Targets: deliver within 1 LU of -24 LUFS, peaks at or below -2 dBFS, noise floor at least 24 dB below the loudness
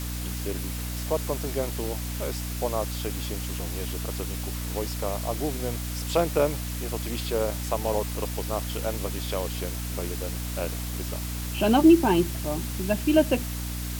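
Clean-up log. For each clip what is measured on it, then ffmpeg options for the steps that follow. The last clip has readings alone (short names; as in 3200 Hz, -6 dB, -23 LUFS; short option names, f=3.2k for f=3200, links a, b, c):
hum 60 Hz; harmonics up to 300 Hz; hum level -30 dBFS; noise floor -32 dBFS; noise floor target -52 dBFS; loudness -27.5 LUFS; peak -7.5 dBFS; loudness target -24.0 LUFS
-> -af "bandreject=f=60:t=h:w=6,bandreject=f=120:t=h:w=6,bandreject=f=180:t=h:w=6,bandreject=f=240:t=h:w=6,bandreject=f=300:t=h:w=6"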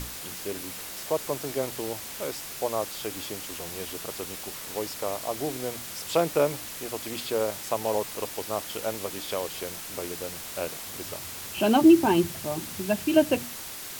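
hum none; noise floor -39 dBFS; noise floor target -53 dBFS
-> -af "afftdn=nr=14:nf=-39"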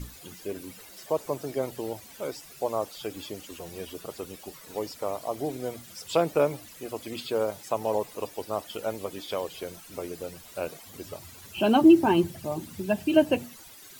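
noise floor -49 dBFS; noise floor target -53 dBFS
-> -af "afftdn=nr=6:nf=-49"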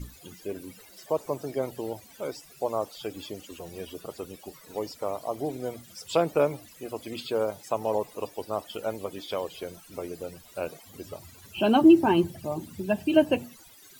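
noise floor -52 dBFS; loudness -28.0 LUFS; peak -7.5 dBFS; loudness target -24.0 LUFS
-> -af "volume=4dB"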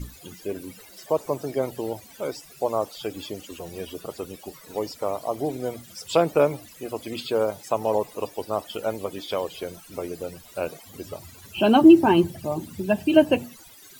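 loudness -24.0 LUFS; peak -3.5 dBFS; noise floor -48 dBFS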